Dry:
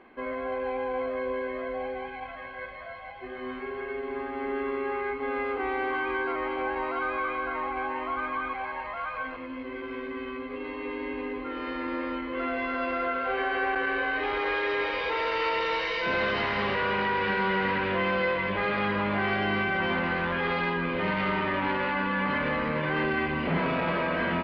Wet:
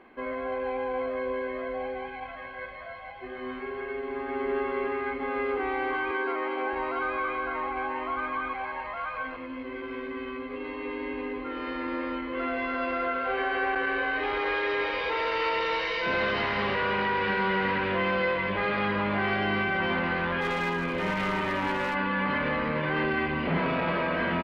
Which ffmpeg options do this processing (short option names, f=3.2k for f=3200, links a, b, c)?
-filter_complex "[0:a]asplit=2[a][b];[b]afade=t=in:st=3.92:d=0.01,afade=t=out:st=4.51:d=0.01,aecho=0:1:360|720|1080|1440|1800|2160|2520|2880|3240|3600|3960|4320:0.794328|0.55603|0.389221|0.272455|0.190718|0.133503|0.0934519|0.0654163|0.0457914|0.032054|0.0224378|0.0157065[c];[a][c]amix=inputs=2:normalize=0,asettb=1/sr,asplit=3[d][e][f];[d]atrim=end=6.114[g];[e]atrim=start=6.11:end=6.73,asetpts=PTS-STARTPTS,afade=t=in:d=0.004:c=qsin,afade=t=out:st=0.616:d=0.004:c=qsin,highpass=f=180:w=0.5412,highpass=f=180:w=1.3066[h];[f]atrim=start=6.726[i];[g][h]acrossfade=d=0.004:c1=hsin:c2=qsin[j];[j][i]acrossfade=d=0.004:c1=qsin:c2=hsin,asettb=1/sr,asplit=3[k][l][m];[k]atrim=end=20.414[n];[l]atrim=start=20.41:end=21.95,asetpts=PTS-STARTPTS,afade=t=in:d=0.004:c=qsin,afade=t=out:st=1.536:d=0.004:c=qsin,aeval=exprs='clip(val(0),-1,0.0531)':c=same[o];[m]atrim=start=21.946[p];[n][o]acrossfade=d=0.004:c1=hsin:c2=qsin[q];[q][p]acrossfade=d=0.004:c1=qsin:c2=hsin"